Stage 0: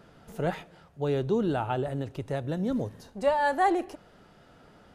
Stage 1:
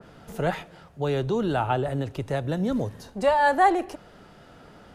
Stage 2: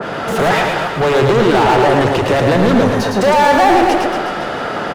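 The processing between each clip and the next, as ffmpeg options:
-filter_complex "[0:a]acrossover=split=120|610|3200[a][b][c][d];[b]alimiter=level_in=3dB:limit=-24dB:level=0:latency=1:release=340,volume=-3dB[e];[a][e][c][d]amix=inputs=4:normalize=0,adynamicequalizer=threshold=0.0126:dfrequency=2200:dqfactor=0.7:tfrequency=2200:tqfactor=0.7:attack=5:release=100:ratio=0.375:range=2:mode=cutabove:tftype=highshelf,volume=6dB"
-filter_complex "[0:a]asplit=2[a][b];[b]highpass=f=720:p=1,volume=36dB,asoftclip=type=tanh:threshold=-9.5dB[c];[a][c]amix=inputs=2:normalize=0,lowpass=f=1.8k:p=1,volume=-6dB,aecho=1:1:110|231|364.1|510.5|671.6:0.631|0.398|0.251|0.158|0.1,volume=3.5dB"

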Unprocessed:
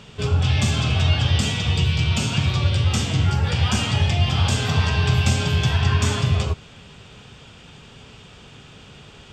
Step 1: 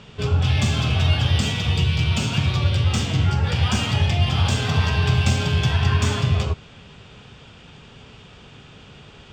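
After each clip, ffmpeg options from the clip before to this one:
-af "adynamicsmooth=sensitivity=2.5:basefreq=7.2k"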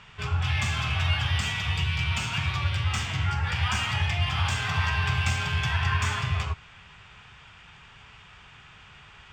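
-af "equalizer=f=125:t=o:w=1:g=-3,equalizer=f=250:t=o:w=1:g=-11,equalizer=f=500:t=o:w=1:g=-10,equalizer=f=1k:t=o:w=1:g=5,equalizer=f=2k:t=o:w=1:g=7,equalizer=f=4k:t=o:w=1:g=-4,volume=-4.5dB"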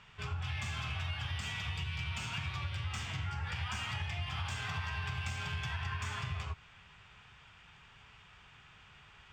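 -af "acompressor=threshold=-26dB:ratio=6,volume=-8dB"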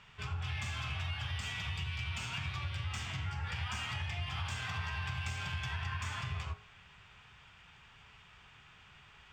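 -af "bandreject=f=51.93:t=h:w=4,bandreject=f=103.86:t=h:w=4,bandreject=f=155.79:t=h:w=4,bandreject=f=207.72:t=h:w=4,bandreject=f=259.65:t=h:w=4,bandreject=f=311.58:t=h:w=4,bandreject=f=363.51:t=h:w=4,bandreject=f=415.44:t=h:w=4,bandreject=f=467.37:t=h:w=4,bandreject=f=519.3:t=h:w=4,bandreject=f=571.23:t=h:w=4,bandreject=f=623.16:t=h:w=4,bandreject=f=675.09:t=h:w=4,bandreject=f=727.02:t=h:w=4,bandreject=f=778.95:t=h:w=4,bandreject=f=830.88:t=h:w=4,bandreject=f=882.81:t=h:w=4,bandreject=f=934.74:t=h:w=4,bandreject=f=986.67:t=h:w=4,bandreject=f=1.0386k:t=h:w=4,bandreject=f=1.09053k:t=h:w=4,bandreject=f=1.14246k:t=h:w=4,bandreject=f=1.19439k:t=h:w=4,bandreject=f=1.24632k:t=h:w=4,bandreject=f=1.29825k:t=h:w=4,bandreject=f=1.35018k:t=h:w=4,bandreject=f=1.40211k:t=h:w=4,bandreject=f=1.45404k:t=h:w=4,bandreject=f=1.50597k:t=h:w=4,bandreject=f=1.5579k:t=h:w=4,bandreject=f=1.60983k:t=h:w=4,bandreject=f=1.66176k:t=h:w=4,bandreject=f=1.71369k:t=h:w=4"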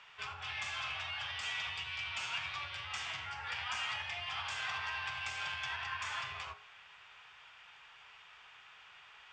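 -filter_complex "[0:a]acrossover=split=470 7600:gain=0.0891 1 0.126[a][b][c];[a][b][c]amix=inputs=3:normalize=0,volume=2.5dB"

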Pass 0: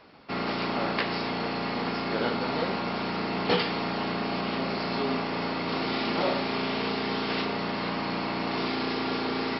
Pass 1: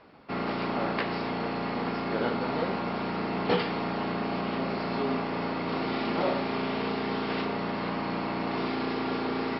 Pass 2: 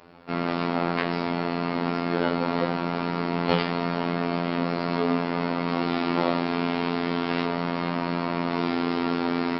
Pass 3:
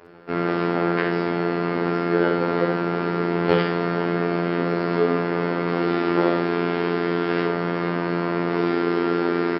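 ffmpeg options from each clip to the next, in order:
-af "lowpass=f=2k:p=1"
-af "acontrast=75,afftfilt=real='hypot(re,im)*cos(PI*b)':imag='0':win_size=2048:overlap=0.75"
-filter_complex "[0:a]equalizer=f=100:t=o:w=0.67:g=7,equalizer=f=400:t=o:w=0.67:g=12,equalizer=f=1.6k:t=o:w=0.67:g=7,equalizer=f=4k:t=o:w=0.67:g=-3,asplit=2[a][b];[b]aecho=0:1:53|64:0.251|0.422[c];[a][c]amix=inputs=2:normalize=0,volume=-2dB"

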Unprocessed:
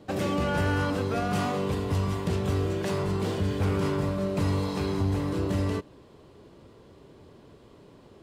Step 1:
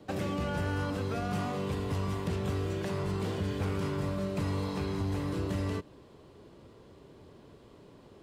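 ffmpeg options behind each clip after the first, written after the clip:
-filter_complex "[0:a]acrossover=split=180|1300|2800[a][b][c][d];[a]acompressor=threshold=-30dB:ratio=4[e];[b]acompressor=threshold=-32dB:ratio=4[f];[c]acompressor=threshold=-44dB:ratio=4[g];[d]acompressor=threshold=-48dB:ratio=4[h];[e][f][g][h]amix=inputs=4:normalize=0,volume=-2dB"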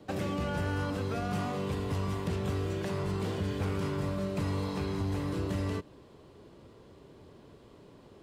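-af anull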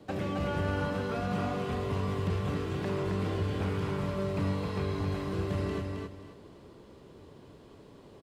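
-filter_complex "[0:a]acrossover=split=4000[a][b];[b]acompressor=threshold=-58dB:ratio=4:attack=1:release=60[c];[a][c]amix=inputs=2:normalize=0,aecho=1:1:267|534|801|1068:0.631|0.164|0.0427|0.0111"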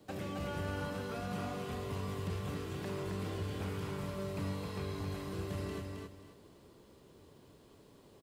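-af "aemphasis=mode=production:type=50kf,volume=-7.5dB"

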